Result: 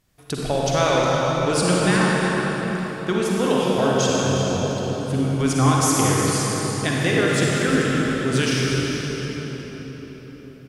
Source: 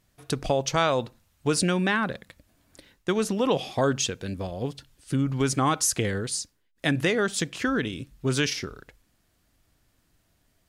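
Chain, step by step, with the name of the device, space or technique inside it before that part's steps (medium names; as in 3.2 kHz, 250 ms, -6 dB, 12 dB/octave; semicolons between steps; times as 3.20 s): cave (delay 359 ms -10.5 dB; reverberation RT60 4.9 s, pre-delay 39 ms, DRR -5 dB)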